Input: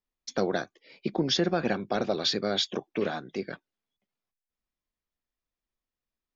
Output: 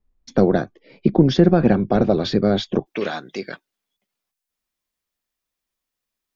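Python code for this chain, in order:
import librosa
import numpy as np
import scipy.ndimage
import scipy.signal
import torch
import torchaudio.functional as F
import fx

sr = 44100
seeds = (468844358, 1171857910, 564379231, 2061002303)

y = fx.tilt_eq(x, sr, slope=fx.steps((0.0, -4.0), (2.85, 1.5)))
y = y * librosa.db_to_amplitude(6.0)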